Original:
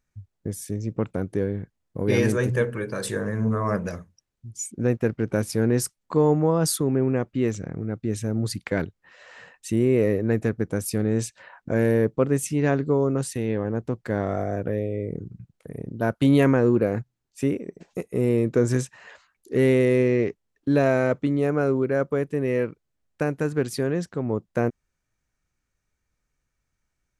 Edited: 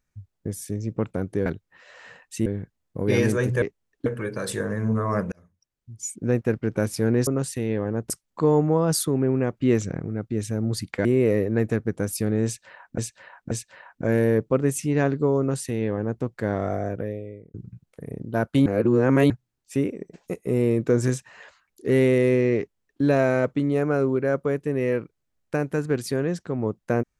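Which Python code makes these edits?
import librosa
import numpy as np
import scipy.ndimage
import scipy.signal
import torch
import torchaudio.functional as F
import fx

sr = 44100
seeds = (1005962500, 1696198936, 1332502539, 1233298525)

y = fx.edit(x, sr, fx.fade_in_span(start_s=3.88, length_s=0.73),
    fx.clip_gain(start_s=7.3, length_s=0.44, db=3.5),
    fx.move(start_s=8.78, length_s=1.0, to_s=1.46),
    fx.repeat(start_s=11.18, length_s=0.53, count=3),
    fx.duplicate(start_s=13.06, length_s=0.83, to_s=5.83),
    fx.fade_out_span(start_s=14.48, length_s=0.73),
    fx.reverse_span(start_s=16.33, length_s=0.64),
    fx.duplicate(start_s=20.25, length_s=0.44, to_s=2.62), tone=tone)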